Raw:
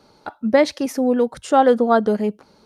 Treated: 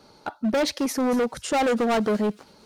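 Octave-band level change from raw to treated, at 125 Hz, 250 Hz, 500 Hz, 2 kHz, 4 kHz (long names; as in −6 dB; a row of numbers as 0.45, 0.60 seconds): can't be measured, −4.0 dB, −7.0 dB, −2.5 dB, +1.0 dB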